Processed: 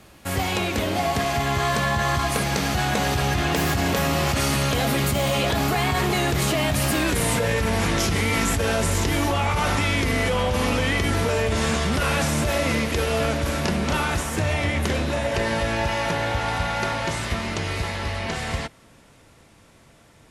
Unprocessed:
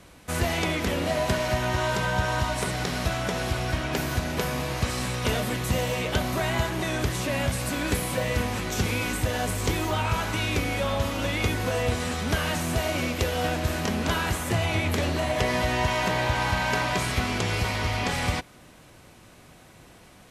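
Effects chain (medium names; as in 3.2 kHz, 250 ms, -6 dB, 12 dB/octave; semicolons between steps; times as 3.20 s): Doppler pass-by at 7.10 s, 35 m/s, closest 3.2 m; level flattener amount 100%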